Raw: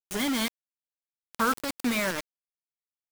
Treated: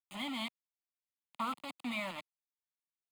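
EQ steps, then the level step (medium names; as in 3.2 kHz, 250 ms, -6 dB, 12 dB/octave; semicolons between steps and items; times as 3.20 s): three-band isolator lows -19 dB, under 160 Hz, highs -18 dB, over 7.6 kHz; static phaser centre 1.6 kHz, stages 6; -6.5 dB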